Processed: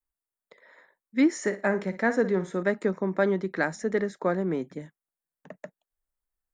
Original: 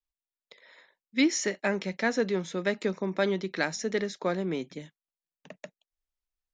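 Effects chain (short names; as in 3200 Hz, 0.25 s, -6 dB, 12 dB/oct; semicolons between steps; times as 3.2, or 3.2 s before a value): band shelf 3900 Hz -13.5 dB; 1.36–2.63 flutter echo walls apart 9.7 m, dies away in 0.27 s; gain +3 dB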